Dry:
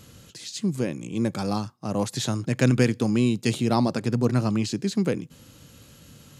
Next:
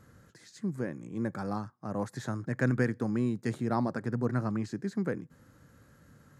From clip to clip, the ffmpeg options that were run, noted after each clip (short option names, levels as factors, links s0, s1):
-af "highshelf=f=2200:t=q:w=3:g=-8.5,volume=0.398"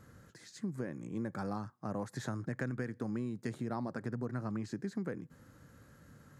-af "acompressor=threshold=0.02:ratio=6"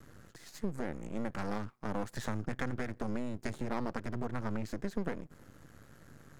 -af "aeval=exprs='max(val(0),0)':c=same,volume=2"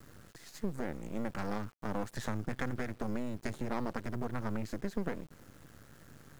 -af "acrusher=bits=9:mix=0:aa=0.000001"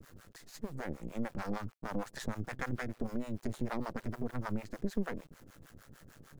-filter_complex "[0:a]acrossover=split=560[s0][s1];[s0]aeval=exprs='val(0)*(1-1/2+1/2*cos(2*PI*6.6*n/s))':c=same[s2];[s1]aeval=exprs='val(0)*(1-1/2-1/2*cos(2*PI*6.6*n/s))':c=same[s3];[s2][s3]amix=inputs=2:normalize=0,volume=1.5"